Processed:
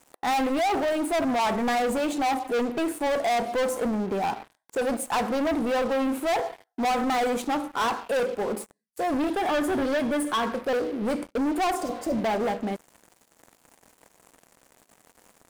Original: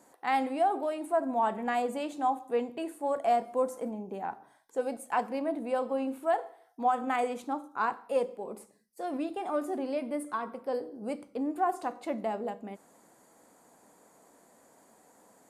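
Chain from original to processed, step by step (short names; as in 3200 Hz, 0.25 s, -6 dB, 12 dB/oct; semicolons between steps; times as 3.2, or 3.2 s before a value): sample leveller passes 5; 9.3–10.55 small resonant body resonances 1700/3300 Hz, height 9 dB, ringing for 20 ms; 11.84–12.15 spectral repair 670–4600 Hz both; gain -4 dB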